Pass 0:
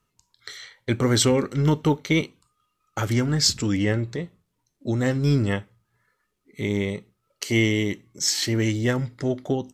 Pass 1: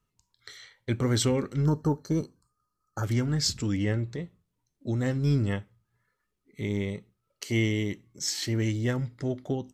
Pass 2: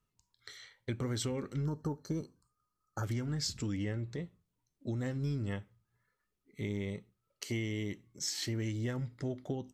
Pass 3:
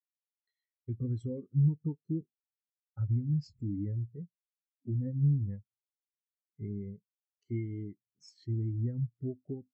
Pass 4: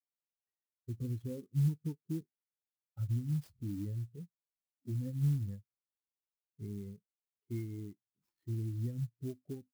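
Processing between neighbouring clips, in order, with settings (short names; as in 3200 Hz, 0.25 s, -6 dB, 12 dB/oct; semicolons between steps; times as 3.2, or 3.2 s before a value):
spectral gain 1.66–3.04, 1800–4100 Hz -21 dB; low shelf 180 Hz +6.5 dB; gain -7.5 dB
compressor, threshold -28 dBFS, peak gain reduction 8 dB; gain -4 dB
in parallel at -11.5 dB: sample-rate reducer 7700 Hz, jitter 0%; on the sum: spectral expander 2.5:1
low-pass opened by the level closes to 1100 Hz, open at -26.5 dBFS; clock jitter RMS 0.044 ms; gain -4 dB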